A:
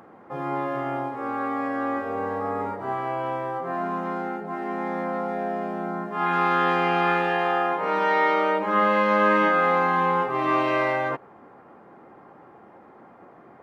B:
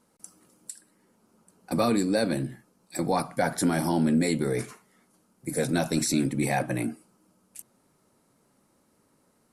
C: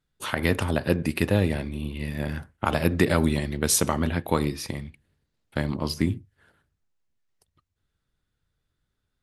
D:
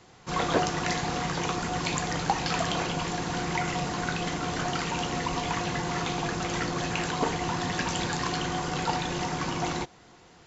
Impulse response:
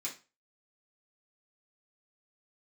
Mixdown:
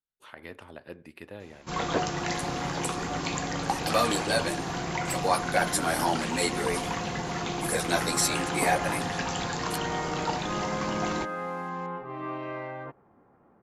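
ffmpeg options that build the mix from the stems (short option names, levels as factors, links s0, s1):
-filter_complex "[0:a]aemphasis=mode=reproduction:type=bsi,adelay=1750,volume=0.2[s0];[1:a]highpass=610,acontrast=39,asplit=2[s1][s2];[s2]adelay=10.4,afreqshift=0.58[s3];[s1][s3]amix=inputs=2:normalize=1,adelay=2150,volume=1.12[s4];[2:a]bass=f=250:g=-11,treble=f=4000:g=-8,volume=0.141[s5];[3:a]adelay=1400,volume=0.75[s6];[s0][s4][s5][s6]amix=inputs=4:normalize=0"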